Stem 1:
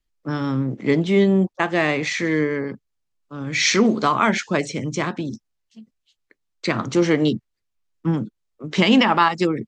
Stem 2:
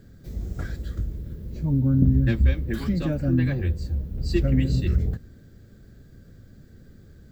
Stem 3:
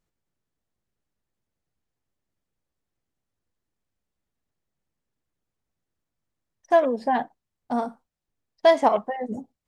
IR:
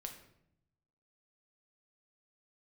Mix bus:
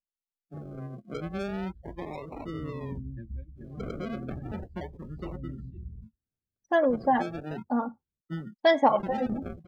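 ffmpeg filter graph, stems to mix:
-filter_complex "[0:a]aecho=1:1:5.3:0.57,alimiter=limit=-11dB:level=0:latency=1:release=232,acrusher=samples=38:mix=1:aa=0.000001:lfo=1:lforange=22.8:lforate=0.34,adelay=250,volume=-15dB[link_01];[1:a]adelay=900,volume=-19.5dB[link_02];[2:a]aecho=1:1:3.6:0.61,volume=-3dB[link_03];[link_01][link_02][link_03]amix=inputs=3:normalize=0,afftdn=noise_reduction=26:noise_floor=-41"

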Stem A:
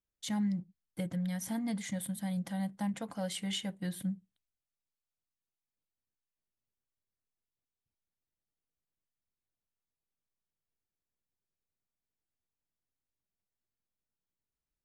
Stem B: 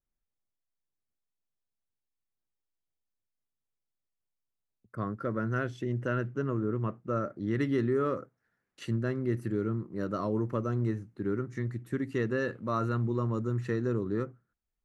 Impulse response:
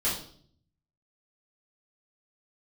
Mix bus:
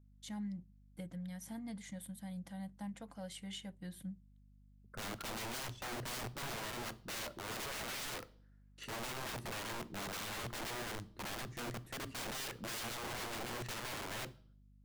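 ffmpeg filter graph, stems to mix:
-filter_complex "[0:a]volume=-10dB[link_01];[1:a]aeval=exprs='val(0)+0.00141*(sin(2*PI*50*n/s)+sin(2*PI*2*50*n/s)/2+sin(2*PI*3*50*n/s)/3+sin(2*PI*4*50*n/s)/4+sin(2*PI*5*50*n/s)/5)':channel_layout=same,aeval=exprs='(mod(44.7*val(0)+1,2)-1)/44.7':channel_layout=same,volume=-5dB,asplit=2[link_02][link_03];[link_03]volume=-23.5dB[link_04];[2:a]atrim=start_sample=2205[link_05];[link_04][link_05]afir=irnorm=-1:irlink=0[link_06];[link_01][link_02][link_06]amix=inputs=3:normalize=0"

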